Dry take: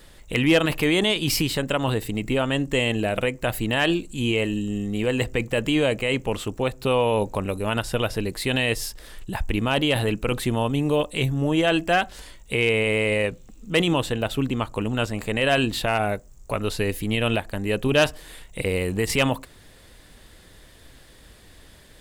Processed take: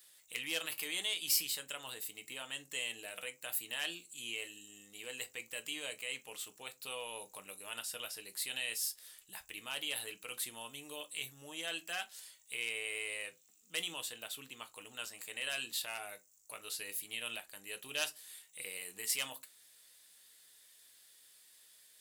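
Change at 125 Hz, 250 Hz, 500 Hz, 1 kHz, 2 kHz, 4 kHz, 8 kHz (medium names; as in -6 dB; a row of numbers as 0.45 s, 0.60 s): -38.0 dB, -32.5 dB, -27.0 dB, -22.5 dB, -15.0 dB, -11.5 dB, -4.0 dB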